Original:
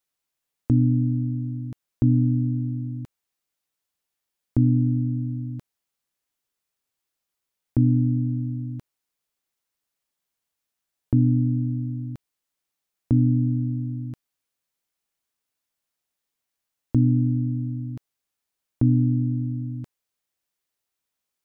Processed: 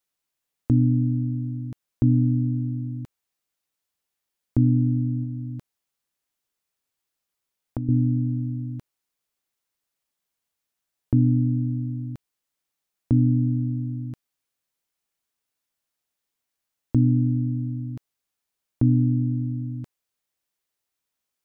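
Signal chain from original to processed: 5.23–7.89 compressor, threshold -27 dBFS, peak gain reduction 12 dB

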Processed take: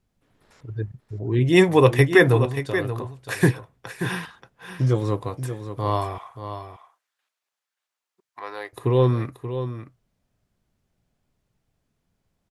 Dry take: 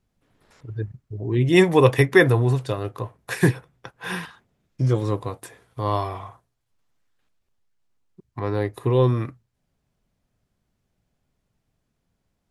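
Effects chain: 2.45–3.18 compressor, threshold -26 dBFS, peak gain reduction 9.5 dB; 6.18–8.73 HPF 860 Hz 12 dB/oct; echo 0.581 s -10 dB

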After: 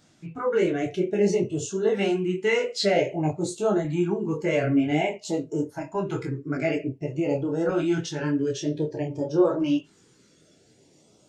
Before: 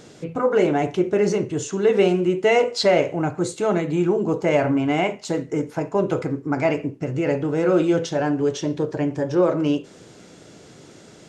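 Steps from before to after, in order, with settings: LFO notch saw up 0.52 Hz 410–2500 Hz; spectral noise reduction 10 dB; detuned doubles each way 21 cents; gain +1 dB

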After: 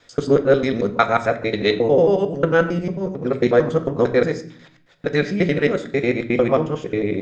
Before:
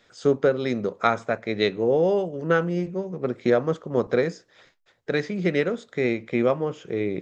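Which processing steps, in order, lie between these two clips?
local time reversal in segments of 90 ms; on a send: reverb RT60 0.50 s, pre-delay 4 ms, DRR 7 dB; on the sum: gain +4.5 dB

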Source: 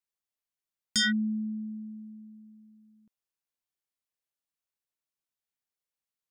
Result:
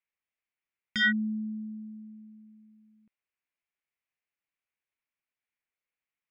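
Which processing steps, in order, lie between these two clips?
synth low-pass 2300 Hz, resonance Q 3.4; gain -1.5 dB

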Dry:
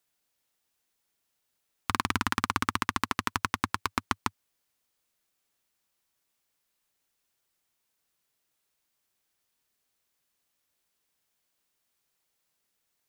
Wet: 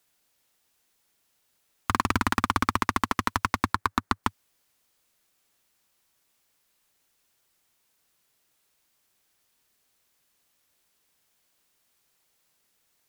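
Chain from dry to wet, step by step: 3.73–4.24 resonant high shelf 2100 Hz -6.5 dB, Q 1.5; in parallel at -9 dB: sine folder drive 11 dB, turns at -4.5 dBFS; on the sum: gain -2 dB

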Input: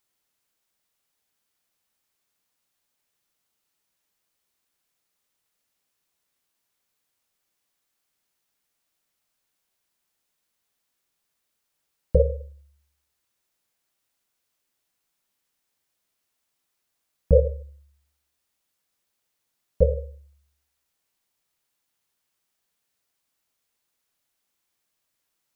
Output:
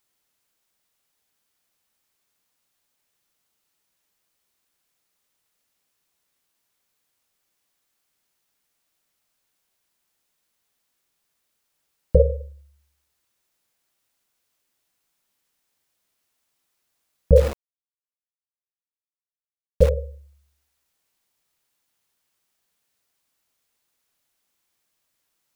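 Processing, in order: 17.36–19.89 sample gate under -28 dBFS; gain +3 dB

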